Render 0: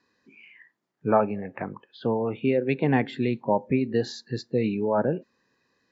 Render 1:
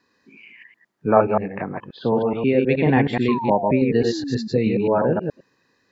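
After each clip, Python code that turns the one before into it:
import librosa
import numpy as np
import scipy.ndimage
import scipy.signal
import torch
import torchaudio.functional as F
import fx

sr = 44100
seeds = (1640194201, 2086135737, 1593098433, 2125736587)

y = fx.reverse_delay(x, sr, ms=106, wet_db=-3)
y = fx.spec_paint(y, sr, seeds[0], shape='fall', start_s=3.28, length_s=1.2, low_hz=210.0, high_hz=1100.0, level_db=-32.0)
y = y * librosa.db_to_amplitude(4.0)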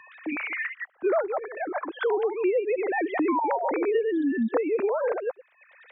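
y = fx.sine_speech(x, sr)
y = fx.band_squash(y, sr, depth_pct=100)
y = y * librosa.db_to_amplitude(-6.5)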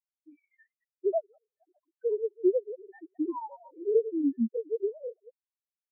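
y = fx.spectral_expand(x, sr, expansion=4.0)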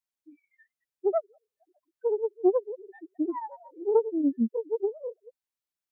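y = fx.self_delay(x, sr, depth_ms=0.16)
y = y * librosa.db_to_amplitude(2.0)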